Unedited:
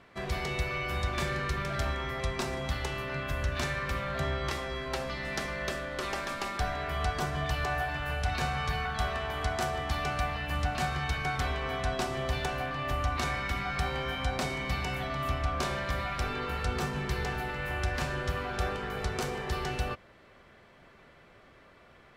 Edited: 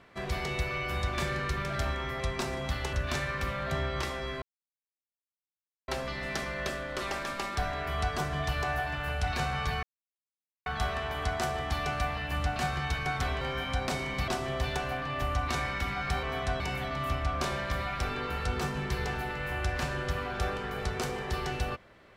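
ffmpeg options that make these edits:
ffmpeg -i in.wav -filter_complex "[0:a]asplit=8[link_01][link_02][link_03][link_04][link_05][link_06][link_07][link_08];[link_01]atrim=end=2.932[link_09];[link_02]atrim=start=3.408:end=4.9,asetpts=PTS-STARTPTS,afade=type=out:start_time=1.488:duration=0.004:curve=hsin,apad=pad_dur=1.46[link_10];[link_03]atrim=start=4.9:end=8.85,asetpts=PTS-STARTPTS,afade=type=in:duration=0.004:curve=hsin,afade=type=out:start_time=3.946:duration=0.004:curve=hsin,apad=pad_dur=0.83[link_11];[link_04]atrim=start=8.85:end=11.602,asetpts=PTS-STARTPTS,afade=type=in:duration=0.004:curve=hsin[link_12];[link_05]atrim=start=13.918:end=14.792[link_13];[link_06]atrim=start=11.968:end=13.922[link_14];[link_07]atrim=start=11.598:end=11.972[link_15];[link_08]atrim=start=14.788[link_16];[link_10][link_11][link_12]concat=n=3:v=0:a=1[link_17];[link_09][link_17]acrossfade=duration=0.004:curve1=hsin:curve2=hsin[link_18];[link_18][link_13]acrossfade=duration=0.004:curve1=hsin:curve2=hsin[link_19];[link_19][link_14]acrossfade=duration=0.004:curve1=hsin:curve2=hsin[link_20];[link_20][link_15]acrossfade=duration=0.004:curve1=hsin:curve2=hsin[link_21];[link_21][link_16]acrossfade=duration=0.004:curve1=hsin:curve2=hsin" out.wav

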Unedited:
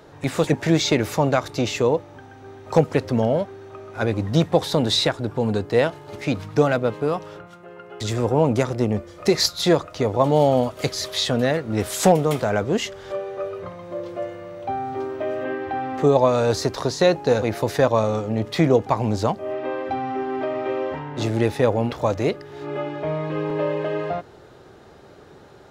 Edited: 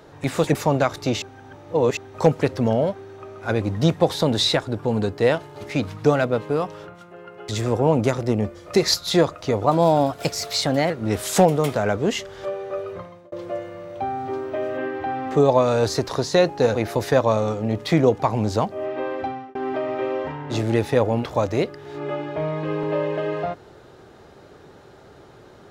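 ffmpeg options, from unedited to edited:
ffmpeg -i in.wav -filter_complex "[0:a]asplit=8[link_01][link_02][link_03][link_04][link_05][link_06][link_07][link_08];[link_01]atrim=end=0.552[link_09];[link_02]atrim=start=1.068:end=1.742[link_10];[link_03]atrim=start=1.738:end=2.492,asetpts=PTS-STARTPTS,areverse[link_11];[link_04]atrim=start=2.488:end=10.184[link_12];[link_05]atrim=start=10.18:end=11.57,asetpts=PTS-STARTPTS,asetrate=49392,aresample=44100,atrim=end_sample=54731,asetpts=PTS-STARTPTS[link_13];[link_06]atrim=start=11.566:end=13.99,asetpts=PTS-STARTPTS,afade=type=out:start_time=2.064:duration=0.36[link_14];[link_07]atrim=start=13.99:end=20.22,asetpts=PTS-STARTPTS,afade=type=in:duration=0.004:curve=hsin,afade=type=out:start_time=5.88:duration=0.35[link_15];[link_08]atrim=start=20.22,asetpts=PTS-STARTPTS,afade=type=in:duration=0.004:curve=hsin[link_16];[link_09][link_10]acrossfade=duration=0.004:curve1=hsin:curve2=hsin[link_17];[link_17][link_11]acrossfade=duration=0.004:curve1=hsin:curve2=hsin[link_18];[link_18][link_12]acrossfade=duration=0.004:curve1=hsin:curve2=hsin[link_19];[link_19][link_13]acrossfade=duration=0.004:curve1=hsin:curve2=hsin[link_20];[link_14][link_15][link_16]concat=n=3:v=0:a=1[link_21];[link_20][link_21]acrossfade=duration=0.004:curve1=hsin:curve2=hsin" out.wav

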